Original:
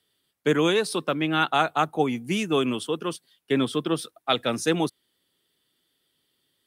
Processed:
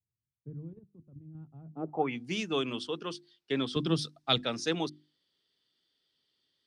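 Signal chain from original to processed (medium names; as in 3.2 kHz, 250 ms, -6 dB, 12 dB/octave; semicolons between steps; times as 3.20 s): 3.76–4.38 s: tone controls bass +15 dB, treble +8 dB; hum notches 50/100/150/200/250/300/350 Hz; 0.73–1.35 s: level held to a coarse grid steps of 10 dB; low-pass sweep 110 Hz -> 5 kHz, 1.64–2.22 s; trim -8 dB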